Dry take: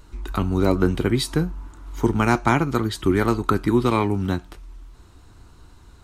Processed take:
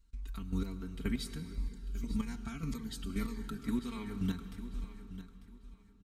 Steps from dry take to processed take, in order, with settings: gate with hold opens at -36 dBFS; passive tone stack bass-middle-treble 6-0-2; comb 4.4 ms, depth 91%; compressor, threshold -41 dBFS, peak gain reduction 10.5 dB; chopper 1.9 Hz, depth 65%, duty 20%; feedback echo 0.896 s, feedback 23%, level -13.5 dB; reverb RT60 3.6 s, pre-delay 92 ms, DRR 11 dB; 1.56–3.64 cascading phaser falling 1.8 Hz; gain +11.5 dB

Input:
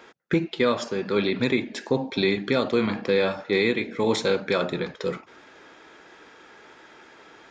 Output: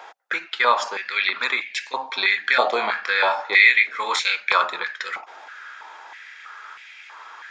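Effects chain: 2.42–4.34 doubler 24 ms -8 dB; stepped high-pass 3.1 Hz 770–2300 Hz; gain +4 dB

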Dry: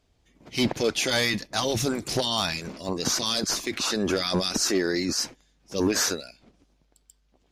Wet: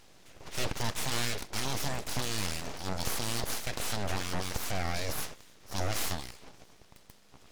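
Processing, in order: per-bin compression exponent 0.6; 0.91–1.41 HPF 160 Hz 24 dB/oct; 4.01–4.95 dynamic EQ 4800 Hz, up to -5 dB, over -38 dBFS, Q 1.4; full-wave rectifier; gain -8.5 dB

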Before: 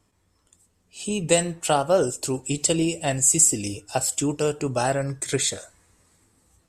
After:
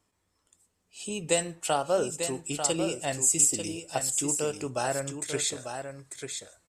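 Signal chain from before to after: low shelf 250 Hz -7.5 dB; echo 0.894 s -7.5 dB; gain -5 dB

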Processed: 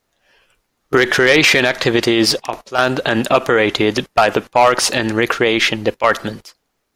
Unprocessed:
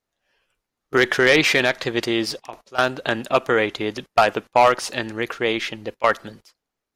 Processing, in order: maximiser +14 dB; gain -1 dB

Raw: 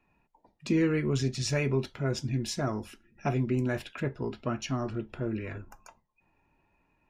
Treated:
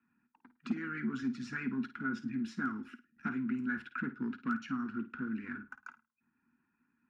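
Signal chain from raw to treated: harmonic-percussive split harmonic -12 dB; sample leveller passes 2; double band-pass 590 Hz, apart 2.6 oct; hard clip -25.5 dBFS, distortion -35 dB; on a send: flutter echo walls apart 9.1 m, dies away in 0.25 s; on the sum: three-band squash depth 40%; gain +2.5 dB

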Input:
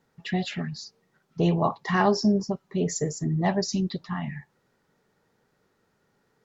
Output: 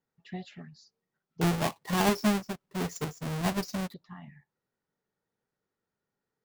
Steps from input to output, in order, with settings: 1.41–3.94 half-waves squared off; upward expander 1.5:1, over -35 dBFS; gain -7 dB

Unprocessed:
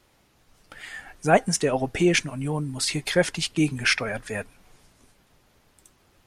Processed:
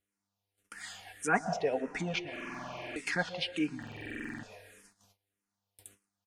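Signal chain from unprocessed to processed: treble ducked by the level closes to 1700 Hz, closed at -21.5 dBFS; tilt +3 dB/oct; buzz 100 Hz, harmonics 38, -59 dBFS -6 dB/oct; bell 740 Hz +2.5 dB 0.42 oct; comb 4.2 ms, depth 30%; echo 0.182 s -22.5 dB; plate-style reverb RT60 1.1 s, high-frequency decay 0.9×, pre-delay 0.105 s, DRR 13.5 dB; gate -51 dBFS, range -25 dB; stuck buffer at 2.31/3.78, samples 2048, times 13; endless phaser -1.7 Hz; gain -3.5 dB

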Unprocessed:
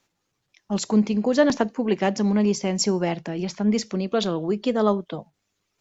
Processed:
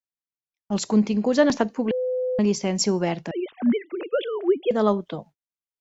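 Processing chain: 3.31–4.71 sine-wave speech; gate -46 dBFS, range -33 dB; 1.91–2.39 bleep 507 Hz -22 dBFS

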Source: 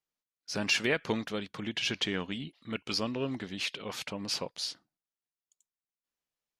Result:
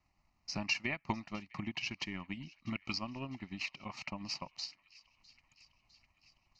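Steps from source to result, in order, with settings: added noise pink -73 dBFS; in parallel at +1 dB: compressor, threshold -42 dBFS, peak gain reduction 17.5 dB; on the sum: transient shaper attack +8 dB, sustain -9 dB; air absorption 120 m; fixed phaser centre 2300 Hz, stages 8; on a send: thin delay 0.655 s, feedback 67%, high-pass 1800 Hz, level -21 dB; on the sum: gain -6.5 dB

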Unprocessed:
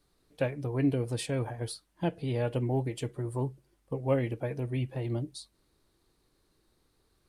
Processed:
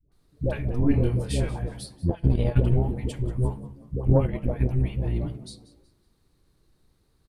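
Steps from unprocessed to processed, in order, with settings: octaver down 1 oct, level +1 dB; 0.8–1.39 doubler 25 ms -3.5 dB; dispersion highs, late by 0.119 s, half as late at 590 Hz; on a send at -15.5 dB: reverb RT60 0.65 s, pre-delay 16 ms; 4.02–4.69 on the sum: transient shaper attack +10 dB, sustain -9 dB; low shelf 140 Hz +5.5 dB; frequency-shifting echo 0.185 s, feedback 35%, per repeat +77 Hz, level -18 dB; 2.09–2.74 transient shaper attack +11 dB, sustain -11 dB

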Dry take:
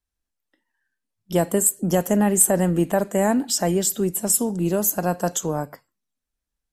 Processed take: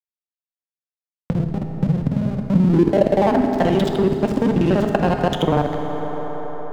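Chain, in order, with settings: local time reversal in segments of 48 ms; low-pass opened by the level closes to 2200 Hz, open at -15.5 dBFS; in parallel at +0.5 dB: negative-ratio compressor -24 dBFS, ratio -0.5; on the sum: low-pass sweep 130 Hz -> 3200 Hz, 2.41–3.71; backlash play -18.5 dBFS; on a send at -4.5 dB: reverb RT60 2.6 s, pre-delay 4 ms; on the sum: three-band squash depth 70%

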